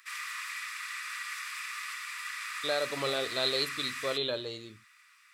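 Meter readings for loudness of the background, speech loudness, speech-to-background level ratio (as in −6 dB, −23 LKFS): −37.0 LKFS, −32.0 LKFS, 5.0 dB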